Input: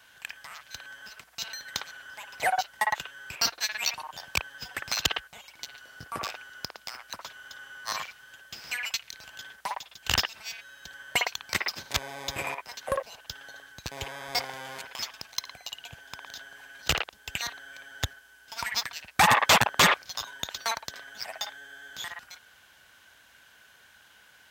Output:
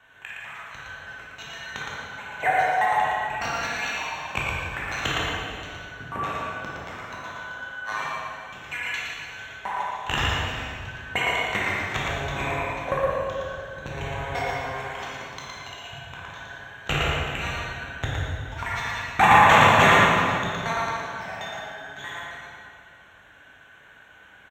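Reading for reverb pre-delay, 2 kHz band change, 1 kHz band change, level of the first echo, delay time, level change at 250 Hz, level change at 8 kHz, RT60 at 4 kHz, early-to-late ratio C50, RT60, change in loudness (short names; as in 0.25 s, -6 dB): 11 ms, +6.0 dB, +8.5 dB, -3.0 dB, 0.115 s, +10.0 dB, -6.5 dB, 1.7 s, -3.5 dB, 2.3 s, +5.0 dB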